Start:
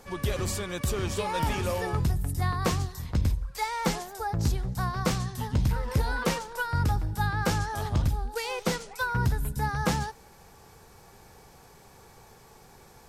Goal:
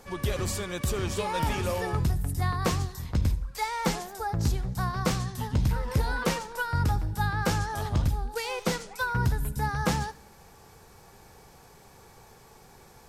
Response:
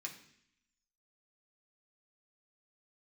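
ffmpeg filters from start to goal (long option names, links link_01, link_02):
-filter_complex "[0:a]asplit=2[link_01][link_02];[1:a]atrim=start_sample=2205,adelay=73[link_03];[link_02][link_03]afir=irnorm=-1:irlink=0,volume=-16dB[link_04];[link_01][link_04]amix=inputs=2:normalize=0"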